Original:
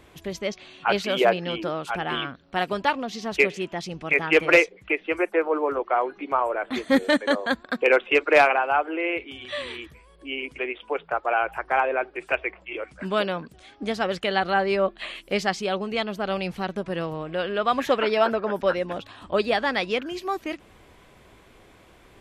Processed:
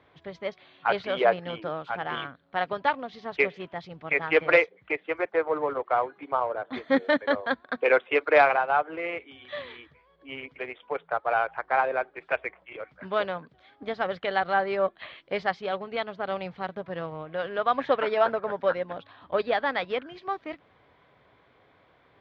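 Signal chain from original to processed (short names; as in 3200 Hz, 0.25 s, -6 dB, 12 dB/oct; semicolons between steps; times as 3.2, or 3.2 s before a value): 6.31–6.73 bell 2200 Hz -11.5 dB 0.86 oct; in parallel at -3.5 dB: backlash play -21 dBFS; on the sum: speaker cabinet 120–3600 Hz, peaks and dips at 210 Hz -9 dB, 350 Hz -8 dB, 2700 Hz -8 dB; gain -5 dB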